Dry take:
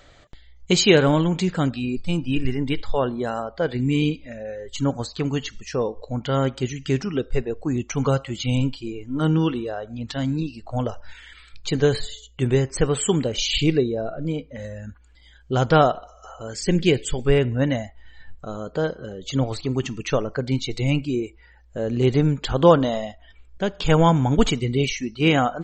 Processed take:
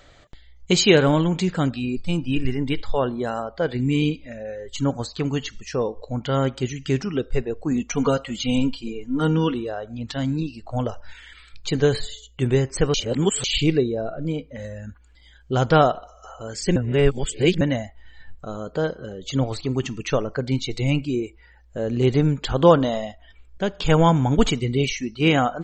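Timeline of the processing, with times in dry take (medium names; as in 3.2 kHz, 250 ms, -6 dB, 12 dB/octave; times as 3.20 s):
7.71–9.54 s: comb 4.2 ms
12.94–13.44 s: reverse
16.76–17.61 s: reverse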